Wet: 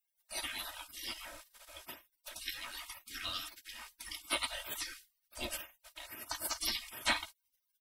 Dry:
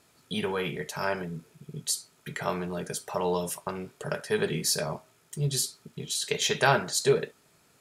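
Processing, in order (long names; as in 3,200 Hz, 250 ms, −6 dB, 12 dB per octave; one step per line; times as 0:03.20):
gate on every frequency bin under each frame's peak −30 dB weak
notch filter 6,800 Hz, Q 13
comb filter 3.2 ms, depth 57%
level +10 dB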